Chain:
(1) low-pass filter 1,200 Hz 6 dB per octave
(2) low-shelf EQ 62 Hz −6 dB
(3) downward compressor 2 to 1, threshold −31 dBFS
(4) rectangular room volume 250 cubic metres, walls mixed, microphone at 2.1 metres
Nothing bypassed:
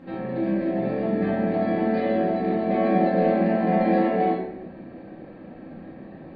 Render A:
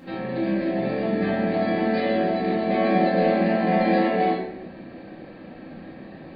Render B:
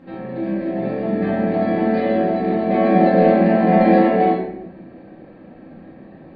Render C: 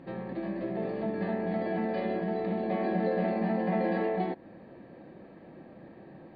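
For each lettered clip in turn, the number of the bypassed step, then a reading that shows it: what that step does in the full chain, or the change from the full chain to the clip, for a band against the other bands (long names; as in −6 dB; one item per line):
1, 2 kHz band +5.0 dB
3, average gain reduction 3.0 dB
4, echo-to-direct ratio 5.5 dB to none audible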